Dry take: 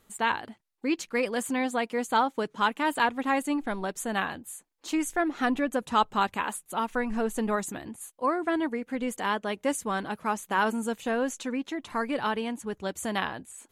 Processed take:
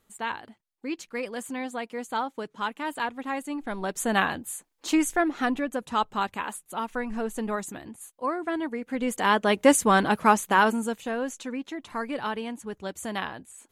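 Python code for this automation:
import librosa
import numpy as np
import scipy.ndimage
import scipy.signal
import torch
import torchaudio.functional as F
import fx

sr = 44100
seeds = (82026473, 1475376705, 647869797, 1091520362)

y = fx.gain(x, sr, db=fx.line((3.52, -5.0), (4.07, 5.5), (4.94, 5.5), (5.69, -2.0), (8.66, -2.0), (9.59, 10.0), (10.28, 10.0), (11.09, -2.0)))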